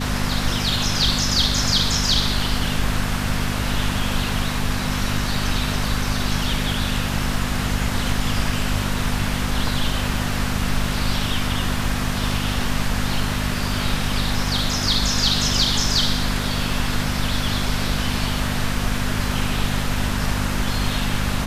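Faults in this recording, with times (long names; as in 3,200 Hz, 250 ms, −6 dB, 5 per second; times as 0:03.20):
mains hum 50 Hz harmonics 5 −26 dBFS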